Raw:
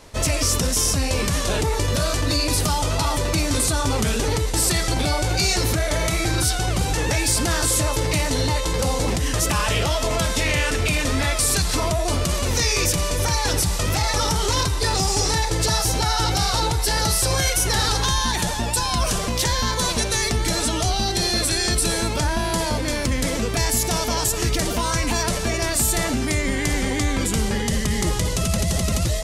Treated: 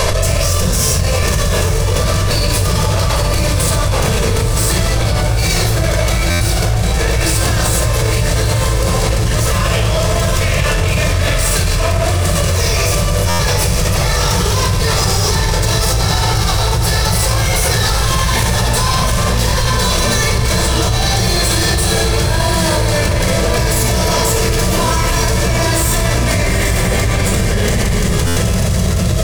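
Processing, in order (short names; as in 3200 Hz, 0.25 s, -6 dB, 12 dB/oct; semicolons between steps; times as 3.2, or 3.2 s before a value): soft clip -24.5 dBFS, distortion -9 dB; bell 270 Hz -14 dB 0.3 oct; diffused feedback echo 0.886 s, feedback 44%, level -6 dB; shoebox room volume 2900 m³, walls furnished, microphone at 5.6 m; stuck buffer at 6.3/13.29/28.26, samples 512, times 8; fast leveller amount 100%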